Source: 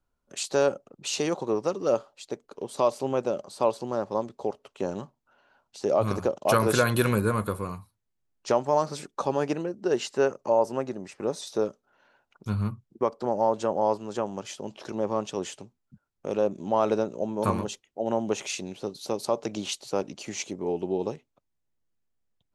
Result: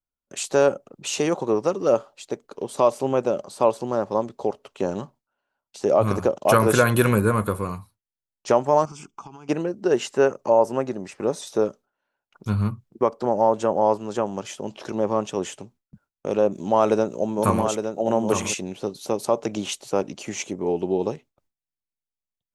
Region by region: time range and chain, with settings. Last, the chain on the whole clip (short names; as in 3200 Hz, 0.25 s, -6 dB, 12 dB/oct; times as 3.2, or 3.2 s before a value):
8.85–9.49 compressor 10:1, threshold -37 dBFS + fixed phaser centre 2700 Hz, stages 8
16.52–18.54 high shelf 5500 Hz +8 dB + echo 0.863 s -7 dB
whole clip: dynamic EQ 4400 Hz, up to -7 dB, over -52 dBFS, Q 2; gate with hold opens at -49 dBFS; gain +5 dB